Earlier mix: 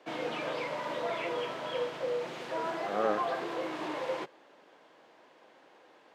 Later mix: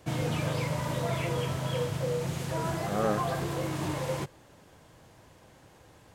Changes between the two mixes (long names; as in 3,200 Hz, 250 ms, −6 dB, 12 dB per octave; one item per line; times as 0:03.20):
background: remove high-pass filter 190 Hz 12 dB per octave
master: remove three-way crossover with the lows and the highs turned down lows −24 dB, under 260 Hz, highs −20 dB, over 4,500 Hz